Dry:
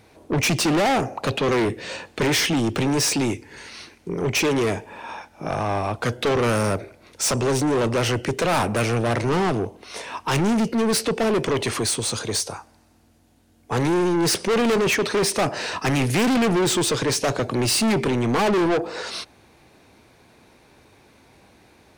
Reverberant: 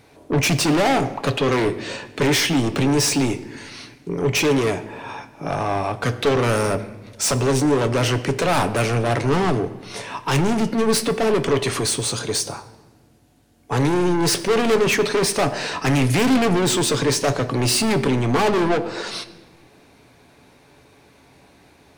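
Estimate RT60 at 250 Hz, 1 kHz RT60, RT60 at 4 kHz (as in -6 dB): 2.1 s, 1.1 s, 0.90 s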